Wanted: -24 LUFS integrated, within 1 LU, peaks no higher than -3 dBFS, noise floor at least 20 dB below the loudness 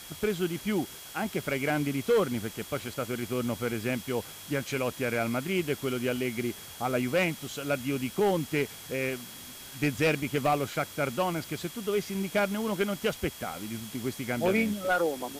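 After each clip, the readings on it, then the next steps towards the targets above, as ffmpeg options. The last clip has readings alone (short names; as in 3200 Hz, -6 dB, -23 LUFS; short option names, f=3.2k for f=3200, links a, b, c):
steady tone 3300 Hz; tone level -51 dBFS; noise floor -45 dBFS; noise floor target -50 dBFS; loudness -30.0 LUFS; peak -17.5 dBFS; loudness target -24.0 LUFS
-> -af "bandreject=f=3.3k:w=30"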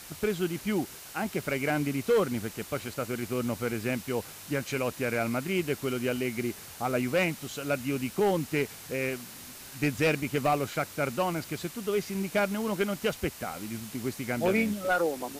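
steady tone none; noise floor -46 dBFS; noise floor target -51 dBFS
-> -af "afftdn=nr=6:nf=-46"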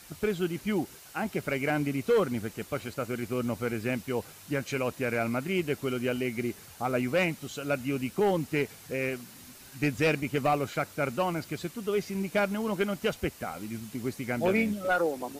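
noise floor -50 dBFS; noise floor target -51 dBFS
-> -af "afftdn=nr=6:nf=-50"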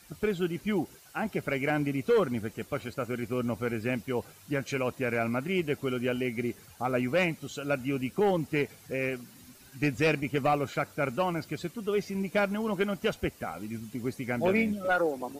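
noise floor -54 dBFS; loudness -30.5 LUFS; peak -17.0 dBFS; loudness target -24.0 LUFS
-> -af "volume=6.5dB"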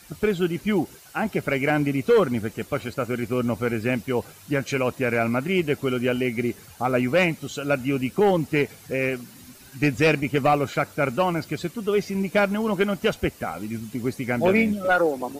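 loudness -24.0 LUFS; peak -10.5 dBFS; noise floor -48 dBFS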